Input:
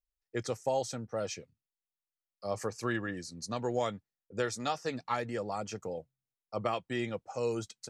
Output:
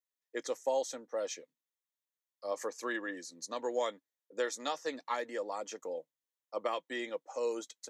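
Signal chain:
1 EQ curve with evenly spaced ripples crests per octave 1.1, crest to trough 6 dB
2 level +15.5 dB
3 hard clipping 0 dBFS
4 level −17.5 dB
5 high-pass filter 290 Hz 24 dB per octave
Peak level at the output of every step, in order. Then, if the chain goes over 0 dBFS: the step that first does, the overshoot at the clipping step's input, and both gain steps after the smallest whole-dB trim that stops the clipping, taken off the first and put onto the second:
−17.5, −2.0, −2.0, −19.5, −20.5 dBFS
no step passes full scale

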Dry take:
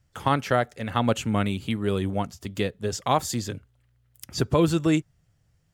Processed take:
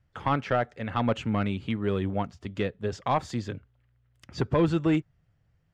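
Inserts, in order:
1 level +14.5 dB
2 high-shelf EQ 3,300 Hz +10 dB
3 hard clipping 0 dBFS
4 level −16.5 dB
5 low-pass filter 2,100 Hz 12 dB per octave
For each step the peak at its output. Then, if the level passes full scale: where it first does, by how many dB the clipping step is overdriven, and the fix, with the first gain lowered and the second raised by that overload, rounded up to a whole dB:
+7.5, +8.5, 0.0, −16.5, −16.0 dBFS
step 1, 8.5 dB
step 1 +5.5 dB, step 4 −7.5 dB

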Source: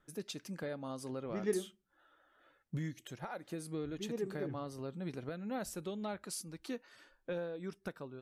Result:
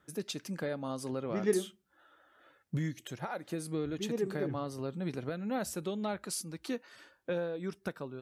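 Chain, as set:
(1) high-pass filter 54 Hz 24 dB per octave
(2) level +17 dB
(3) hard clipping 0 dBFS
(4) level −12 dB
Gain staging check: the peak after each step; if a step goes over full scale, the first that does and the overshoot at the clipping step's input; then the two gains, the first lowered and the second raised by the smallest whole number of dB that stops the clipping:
−22.0, −5.0, −5.0, −17.0 dBFS
no step passes full scale

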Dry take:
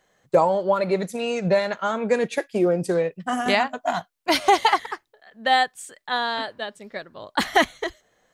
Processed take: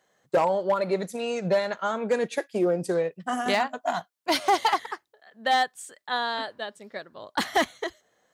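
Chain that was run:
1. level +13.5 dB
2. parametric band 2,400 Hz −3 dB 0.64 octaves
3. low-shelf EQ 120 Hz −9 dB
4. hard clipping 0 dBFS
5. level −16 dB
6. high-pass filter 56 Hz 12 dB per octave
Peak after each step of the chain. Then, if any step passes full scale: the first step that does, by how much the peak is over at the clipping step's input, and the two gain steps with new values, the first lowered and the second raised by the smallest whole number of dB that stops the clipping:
+7.5, +7.0, +7.5, 0.0, −16.0, −14.5 dBFS
step 1, 7.5 dB
step 1 +5.5 dB, step 5 −8 dB

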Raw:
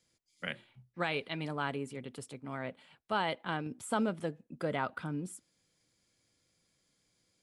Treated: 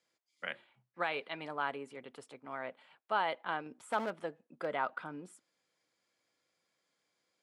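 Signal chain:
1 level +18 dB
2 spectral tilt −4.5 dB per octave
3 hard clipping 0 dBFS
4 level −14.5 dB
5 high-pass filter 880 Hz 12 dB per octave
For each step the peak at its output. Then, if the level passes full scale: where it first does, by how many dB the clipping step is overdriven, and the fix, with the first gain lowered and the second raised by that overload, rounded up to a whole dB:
−1.5, +3.5, 0.0, −14.5, −19.0 dBFS
step 2, 3.5 dB
step 1 +14 dB, step 4 −10.5 dB

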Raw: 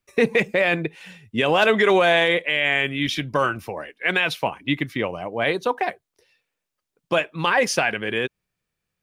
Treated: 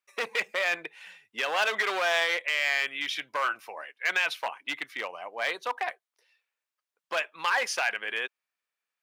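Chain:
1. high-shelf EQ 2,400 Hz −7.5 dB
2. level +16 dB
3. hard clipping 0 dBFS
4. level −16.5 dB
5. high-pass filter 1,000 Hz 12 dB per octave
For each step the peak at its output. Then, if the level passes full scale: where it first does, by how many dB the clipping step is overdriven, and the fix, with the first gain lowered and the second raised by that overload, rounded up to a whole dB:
−8.5, +7.5, 0.0, −16.5, −13.0 dBFS
step 2, 7.5 dB
step 2 +8 dB, step 4 −8.5 dB

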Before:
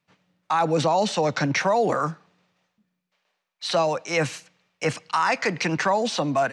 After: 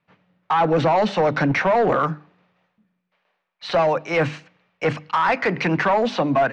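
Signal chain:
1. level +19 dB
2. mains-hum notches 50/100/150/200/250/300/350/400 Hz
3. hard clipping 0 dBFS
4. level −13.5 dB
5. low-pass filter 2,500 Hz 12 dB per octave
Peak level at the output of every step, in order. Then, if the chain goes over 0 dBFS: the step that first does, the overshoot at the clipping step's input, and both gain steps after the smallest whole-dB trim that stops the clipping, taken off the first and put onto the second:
+9.0, +9.0, 0.0, −13.5, −13.0 dBFS
step 1, 9.0 dB
step 1 +10 dB, step 4 −4.5 dB

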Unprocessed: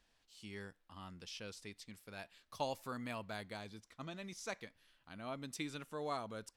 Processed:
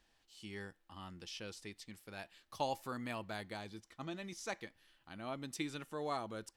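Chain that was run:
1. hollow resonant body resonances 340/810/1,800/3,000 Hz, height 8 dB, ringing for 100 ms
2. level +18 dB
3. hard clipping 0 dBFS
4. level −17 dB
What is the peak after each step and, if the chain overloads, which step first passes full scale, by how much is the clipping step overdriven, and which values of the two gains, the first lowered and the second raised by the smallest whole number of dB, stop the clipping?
−23.0, −5.0, −5.0, −22.0 dBFS
no step passes full scale

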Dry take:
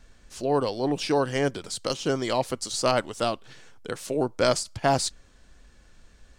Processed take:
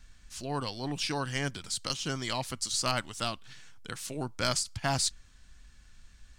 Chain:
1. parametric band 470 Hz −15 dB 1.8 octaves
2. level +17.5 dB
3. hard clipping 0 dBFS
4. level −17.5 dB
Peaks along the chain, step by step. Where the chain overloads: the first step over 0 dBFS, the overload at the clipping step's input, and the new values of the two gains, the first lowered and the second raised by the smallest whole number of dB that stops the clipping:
−10.0, +7.5, 0.0, −17.5 dBFS
step 2, 7.5 dB
step 2 +9.5 dB, step 4 −9.5 dB

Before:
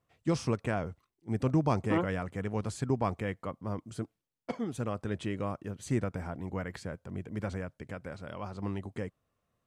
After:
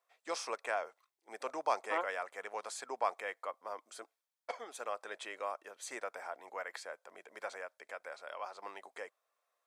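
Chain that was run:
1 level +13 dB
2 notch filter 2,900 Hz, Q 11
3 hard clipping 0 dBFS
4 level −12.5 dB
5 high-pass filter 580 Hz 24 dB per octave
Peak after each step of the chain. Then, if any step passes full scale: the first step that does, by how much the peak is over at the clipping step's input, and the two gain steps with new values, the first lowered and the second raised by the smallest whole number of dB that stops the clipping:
−4.0, −4.0, −4.0, −16.5, −18.5 dBFS
no step passes full scale

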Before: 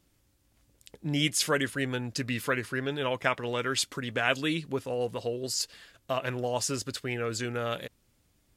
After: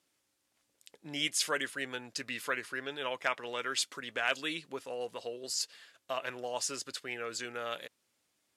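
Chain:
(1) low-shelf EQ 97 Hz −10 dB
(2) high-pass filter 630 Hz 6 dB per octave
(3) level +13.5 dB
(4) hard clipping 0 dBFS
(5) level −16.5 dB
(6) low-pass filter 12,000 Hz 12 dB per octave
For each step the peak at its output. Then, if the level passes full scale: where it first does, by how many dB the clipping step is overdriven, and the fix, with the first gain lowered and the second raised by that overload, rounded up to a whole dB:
−8.5, −10.0, +3.5, 0.0, −16.5, −16.5 dBFS
step 3, 3.5 dB
step 3 +9.5 dB, step 5 −12.5 dB

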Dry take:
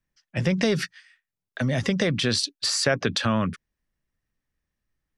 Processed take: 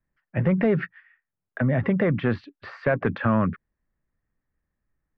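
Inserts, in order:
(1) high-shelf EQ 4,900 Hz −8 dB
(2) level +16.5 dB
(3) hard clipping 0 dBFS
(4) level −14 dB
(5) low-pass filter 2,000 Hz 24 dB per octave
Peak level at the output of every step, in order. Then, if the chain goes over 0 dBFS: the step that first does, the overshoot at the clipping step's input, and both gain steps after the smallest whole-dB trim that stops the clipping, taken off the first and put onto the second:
−8.5, +8.0, 0.0, −14.0, −12.5 dBFS
step 2, 8.0 dB
step 2 +8.5 dB, step 4 −6 dB

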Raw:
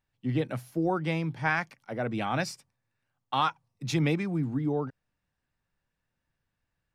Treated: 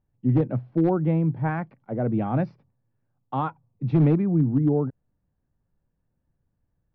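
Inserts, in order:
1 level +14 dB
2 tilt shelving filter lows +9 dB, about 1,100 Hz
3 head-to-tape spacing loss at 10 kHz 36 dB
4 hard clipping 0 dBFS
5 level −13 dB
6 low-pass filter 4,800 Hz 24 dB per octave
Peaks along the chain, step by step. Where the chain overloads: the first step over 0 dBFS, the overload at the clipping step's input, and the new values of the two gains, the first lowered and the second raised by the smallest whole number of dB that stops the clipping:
+0.5, +4.5, +3.5, 0.0, −13.0, −13.0 dBFS
step 1, 3.5 dB
step 1 +10 dB, step 5 −9 dB

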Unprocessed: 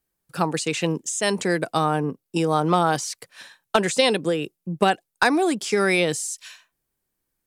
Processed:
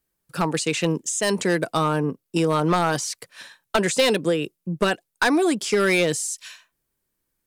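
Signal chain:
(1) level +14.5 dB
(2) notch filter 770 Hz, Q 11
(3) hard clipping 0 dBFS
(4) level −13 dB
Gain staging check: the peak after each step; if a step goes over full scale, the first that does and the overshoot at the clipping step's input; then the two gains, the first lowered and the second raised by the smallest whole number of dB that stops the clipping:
+8.5, +9.5, 0.0, −13.0 dBFS
step 1, 9.5 dB
step 1 +4.5 dB, step 4 −3 dB

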